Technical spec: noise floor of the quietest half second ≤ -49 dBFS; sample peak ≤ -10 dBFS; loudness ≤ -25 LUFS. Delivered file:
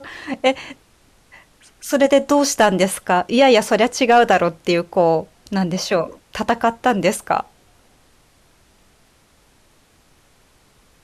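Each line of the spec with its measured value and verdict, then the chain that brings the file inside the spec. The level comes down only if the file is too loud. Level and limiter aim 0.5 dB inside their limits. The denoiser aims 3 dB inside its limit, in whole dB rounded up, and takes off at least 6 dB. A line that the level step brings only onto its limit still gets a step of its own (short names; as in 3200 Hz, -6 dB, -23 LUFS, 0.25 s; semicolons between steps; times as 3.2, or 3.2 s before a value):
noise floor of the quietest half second -56 dBFS: OK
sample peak -4.0 dBFS: fail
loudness -17.5 LUFS: fail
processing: gain -8 dB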